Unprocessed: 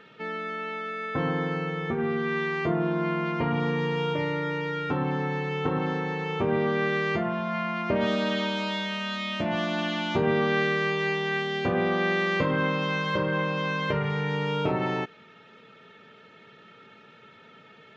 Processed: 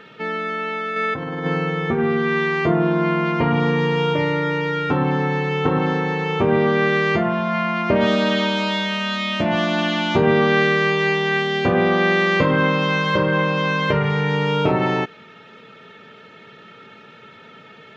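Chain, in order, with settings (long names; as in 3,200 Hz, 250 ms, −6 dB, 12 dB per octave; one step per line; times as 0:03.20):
0:00.96–0:01.46: compressor whose output falls as the input rises −33 dBFS, ratio −1
level +8 dB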